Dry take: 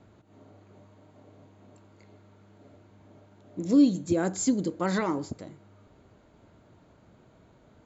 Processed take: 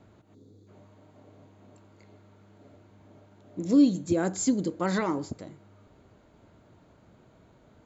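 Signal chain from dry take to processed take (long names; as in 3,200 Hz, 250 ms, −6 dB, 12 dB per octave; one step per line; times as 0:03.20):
gain on a spectral selection 0:00.34–0:00.68, 520–3,300 Hz −18 dB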